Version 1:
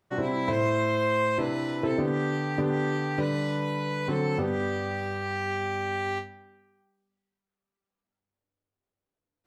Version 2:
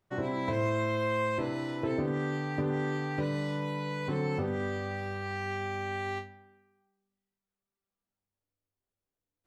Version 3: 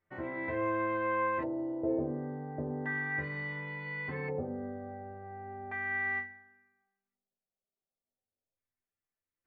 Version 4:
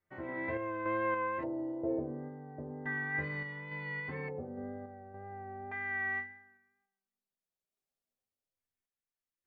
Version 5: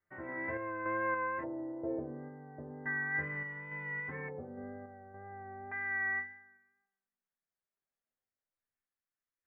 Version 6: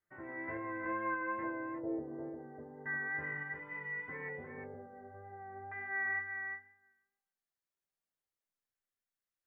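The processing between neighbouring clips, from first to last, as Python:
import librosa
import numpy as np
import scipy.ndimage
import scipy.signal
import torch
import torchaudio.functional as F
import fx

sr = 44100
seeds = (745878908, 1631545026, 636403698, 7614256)

y1 = fx.low_shelf(x, sr, hz=64.0, db=9.0)
y1 = y1 * 10.0 ** (-5.0 / 20.0)
y2 = fx.filter_lfo_lowpass(y1, sr, shape='square', hz=0.35, low_hz=610.0, high_hz=2000.0, q=3.0)
y2 = fx.stiff_resonator(y2, sr, f0_hz=78.0, decay_s=0.22, stiffness=0.008)
y3 = fx.wow_flutter(y2, sr, seeds[0], rate_hz=2.1, depth_cents=21.0)
y3 = fx.tremolo_random(y3, sr, seeds[1], hz=3.5, depth_pct=55)
y4 = fx.ladder_lowpass(y3, sr, hz=2100.0, resonance_pct=45)
y4 = y4 * 10.0 ** (5.5 / 20.0)
y5 = fx.doubler(y4, sr, ms=18.0, db=-7.5)
y5 = y5 + 10.0 ** (-5.5 / 20.0) * np.pad(y5, (int(352 * sr / 1000.0), 0))[:len(y5)]
y5 = y5 * 10.0 ** (-4.0 / 20.0)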